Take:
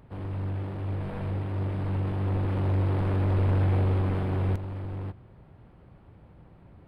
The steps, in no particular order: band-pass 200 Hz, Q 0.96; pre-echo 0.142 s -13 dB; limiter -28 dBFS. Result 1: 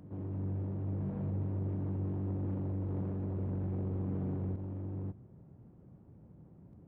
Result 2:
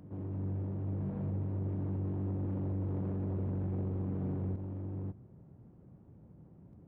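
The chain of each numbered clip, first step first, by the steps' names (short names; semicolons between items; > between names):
band-pass > limiter > pre-echo; band-pass > pre-echo > limiter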